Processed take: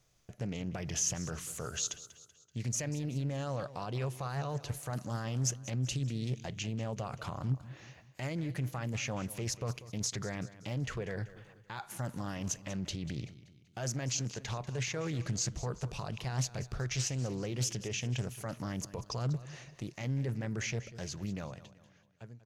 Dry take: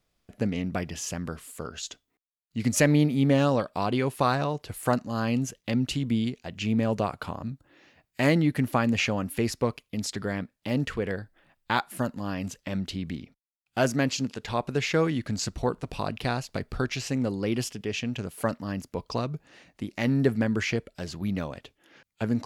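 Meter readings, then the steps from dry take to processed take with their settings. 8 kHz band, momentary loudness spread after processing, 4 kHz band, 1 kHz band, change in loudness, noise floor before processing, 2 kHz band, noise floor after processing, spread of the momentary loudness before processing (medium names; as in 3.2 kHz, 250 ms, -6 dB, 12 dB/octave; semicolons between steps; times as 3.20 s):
+1.0 dB, 9 LU, -6.0 dB, -12.5 dB, -8.5 dB, -79 dBFS, -11.0 dB, -63 dBFS, 12 LU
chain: fade out at the end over 3.32 s; reverse; compression 6:1, threshold -31 dBFS, peak gain reduction 14.5 dB; reverse; peak limiter -31 dBFS, peak gain reduction 12.5 dB; graphic EQ with 31 bands 125 Hz +10 dB, 250 Hz -9 dB, 6.3 kHz +12 dB; on a send: feedback delay 191 ms, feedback 46%, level -16 dB; on the sum: loudspeaker Doppler distortion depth 0.43 ms; trim +2 dB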